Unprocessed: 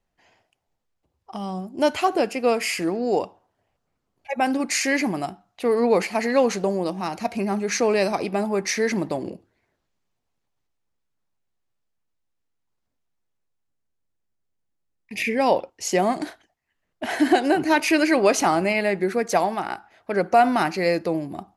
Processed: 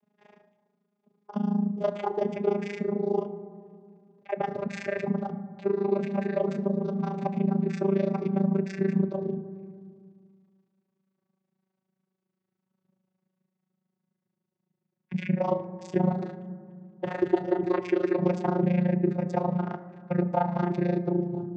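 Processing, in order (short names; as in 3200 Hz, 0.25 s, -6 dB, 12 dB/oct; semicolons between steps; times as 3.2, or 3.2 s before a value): vocoder on a gliding note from G#3, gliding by -3 st; LPF 4000 Hz 6 dB/oct; low shelf 190 Hz +9.5 dB; notches 50/100/150/200 Hz; in parallel at -2 dB: compressor, threshold -26 dBFS, peak gain reduction 15 dB; on the sum: AM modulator 27 Hz, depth 85%; on a send at -10.5 dB: reverb RT60 1.4 s, pre-delay 4 ms; on the sum: three-band squash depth 40%; gain -5 dB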